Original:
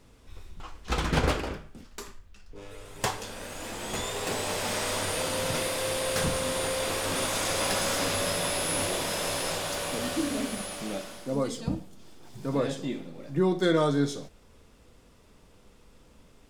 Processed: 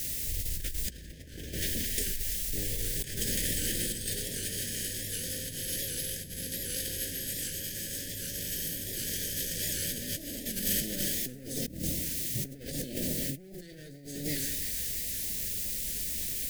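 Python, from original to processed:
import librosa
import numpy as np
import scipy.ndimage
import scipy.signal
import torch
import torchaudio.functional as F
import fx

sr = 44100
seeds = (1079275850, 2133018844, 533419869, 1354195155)

y = fx.lower_of_two(x, sr, delay_ms=0.73)
y = fx.quant_dither(y, sr, seeds[0], bits=8, dither='triangular')
y = fx.formant_shift(y, sr, semitones=3)
y = fx.low_shelf(y, sr, hz=280.0, db=7.0)
y = fx.echo_split(y, sr, split_hz=1700.0, low_ms=102, high_ms=334, feedback_pct=52, wet_db=-11.0)
y = fx.over_compress(y, sr, threshold_db=-37.0, ratio=-1.0)
y = scipy.signal.sosfilt(scipy.signal.ellip(3, 1.0, 80, [600.0, 1800.0], 'bandstop', fs=sr, output='sos'), y)
y = fx.high_shelf(y, sr, hz=4300.0, db=10.0)
y = fx.record_warp(y, sr, rpm=78.0, depth_cents=100.0)
y = y * 10.0 ** (-1.5 / 20.0)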